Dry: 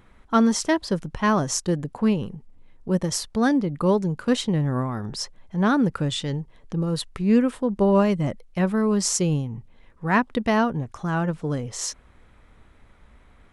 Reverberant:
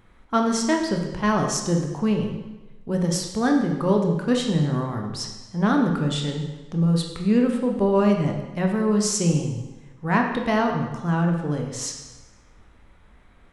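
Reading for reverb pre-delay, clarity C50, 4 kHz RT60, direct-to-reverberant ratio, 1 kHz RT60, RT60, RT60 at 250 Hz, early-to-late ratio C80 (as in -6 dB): 7 ms, 5.0 dB, 1.0 s, 2.0 dB, 1.1 s, 1.1 s, 1.1 s, 7.0 dB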